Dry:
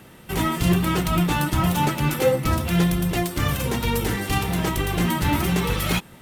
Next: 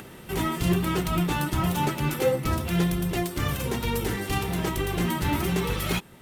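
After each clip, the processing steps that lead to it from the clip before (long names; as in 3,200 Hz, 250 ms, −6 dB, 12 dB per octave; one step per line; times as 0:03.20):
parametric band 390 Hz +5 dB 0.27 octaves
upward compression, threshold −32 dBFS
level −4.5 dB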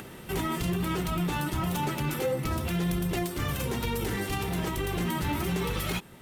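brickwall limiter −21 dBFS, peak gain reduction 8.5 dB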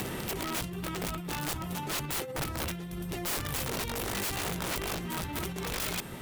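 compressor whose output falls as the input rises −34 dBFS, ratio −0.5
wrap-around overflow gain 29.5 dB
level +2.5 dB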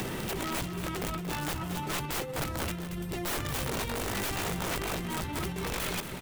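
stylus tracing distortion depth 0.13 ms
on a send: single-tap delay 230 ms −11 dB
on the sum: level +1 dB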